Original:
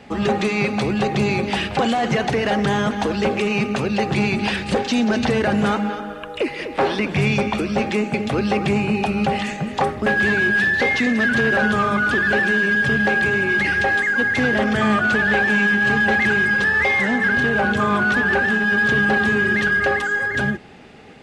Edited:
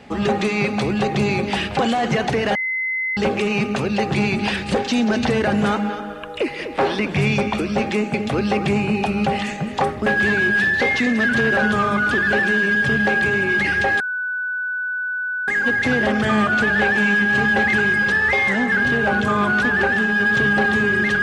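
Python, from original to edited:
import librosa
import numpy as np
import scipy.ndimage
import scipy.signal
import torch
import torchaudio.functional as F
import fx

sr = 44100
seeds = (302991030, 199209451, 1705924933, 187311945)

y = fx.edit(x, sr, fx.bleep(start_s=2.55, length_s=0.62, hz=2050.0, db=-20.0),
    fx.insert_tone(at_s=14.0, length_s=1.48, hz=1490.0, db=-21.5), tone=tone)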